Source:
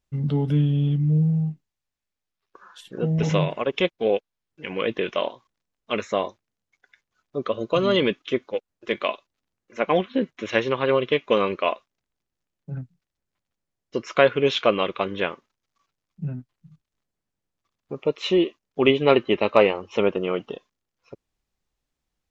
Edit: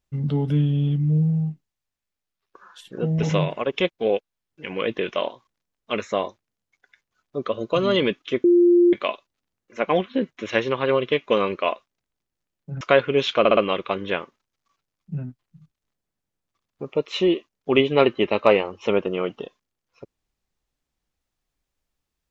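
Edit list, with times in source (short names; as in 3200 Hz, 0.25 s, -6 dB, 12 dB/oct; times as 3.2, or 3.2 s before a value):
8.44–8.93 bleep 349 Hz -11.5 dBFS
12.81–14.09 cut
14.67 stutter 0.06 s, 4 plays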